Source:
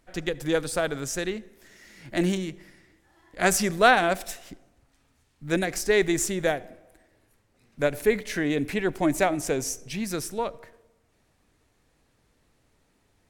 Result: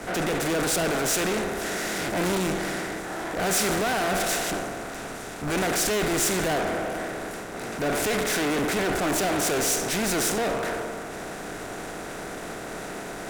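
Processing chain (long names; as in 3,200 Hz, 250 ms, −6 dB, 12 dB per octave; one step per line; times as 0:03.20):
compressor on every frequency bin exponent 0.4
tube saturation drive 30 dB, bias 0.55
multiband upward and downward expander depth 100%
level +6.5 dB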